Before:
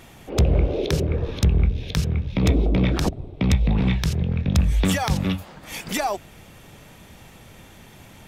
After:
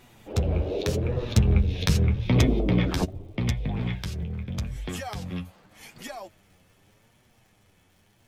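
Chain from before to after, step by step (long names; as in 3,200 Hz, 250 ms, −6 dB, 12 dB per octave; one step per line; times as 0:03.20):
source passing by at 0:01.94, 18 m/s, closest 12 metres
surface crackle 200 per second −55 dBFS
flanger 0.83 Hz, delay 7.9 ms, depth 3.3 ms, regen +25%
level +5.5 dB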